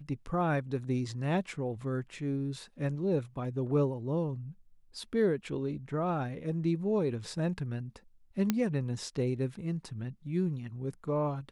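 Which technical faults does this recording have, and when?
8.5 pop -13 dBFS

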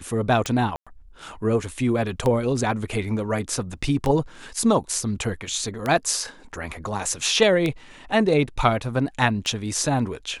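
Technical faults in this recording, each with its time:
tick 33 1/3 rpm
0.76–0.87 gap 0.106 s

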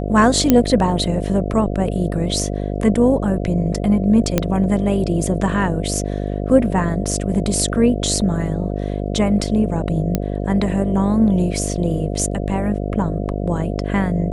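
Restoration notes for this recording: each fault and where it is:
buzz 50 Hz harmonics 14 -23 dBFS
0.5 pop 0 dBFS
4.38 pop -2 dBFS
10.15 pop -5 dBFS

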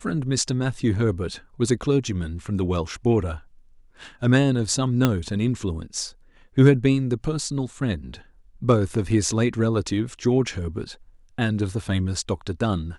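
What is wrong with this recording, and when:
5.05 pop -5 dBFS

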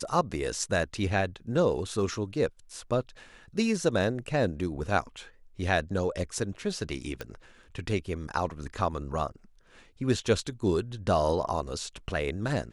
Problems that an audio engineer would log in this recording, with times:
7.21 pop -20 dBFS

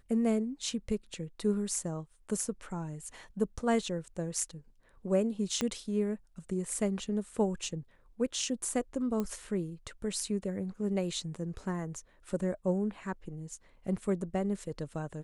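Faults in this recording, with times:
5.61 pop -16 dBFS
9.2 pop -21 dBFS

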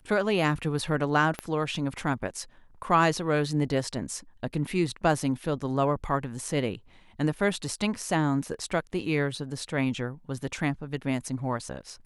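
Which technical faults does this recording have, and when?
1.39 pop -17 dBFS

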